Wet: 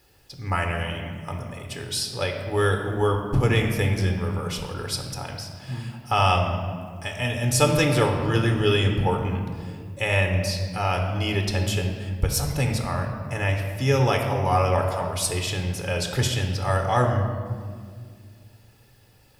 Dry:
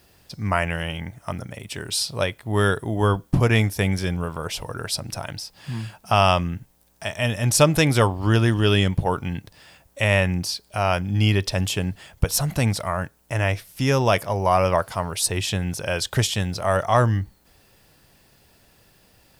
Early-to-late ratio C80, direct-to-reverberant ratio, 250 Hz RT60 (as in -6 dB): 7.0 dB, 3.0 dB, 2.7 s